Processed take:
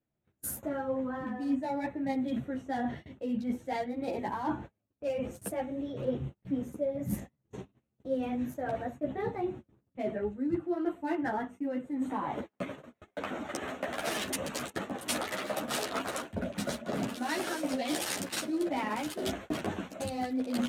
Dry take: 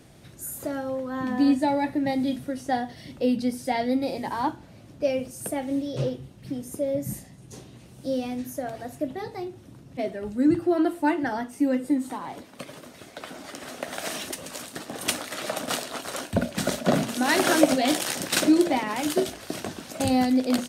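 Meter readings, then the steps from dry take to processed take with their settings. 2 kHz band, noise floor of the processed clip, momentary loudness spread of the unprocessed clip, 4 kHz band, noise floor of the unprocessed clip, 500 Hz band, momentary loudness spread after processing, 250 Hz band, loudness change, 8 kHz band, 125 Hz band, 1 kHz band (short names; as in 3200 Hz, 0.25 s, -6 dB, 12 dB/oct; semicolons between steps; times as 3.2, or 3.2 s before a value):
-7.0 dB, -82 dBFS, 17 LU, -8.0 dB, -49 dBFS, -7.0 dB, 7 LU, -8.5 dB, -8.0 dB, -8.0 dB, -6.5 dB, -6.5 dB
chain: Wiener smoothing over 9 samples; gate -42 dBFS, range -38 dB; reverse; compressor 16:1, threshold -34 dBFS, peak gain reduction 23.5 dB; reverse; ensemble effect; gain +8 dB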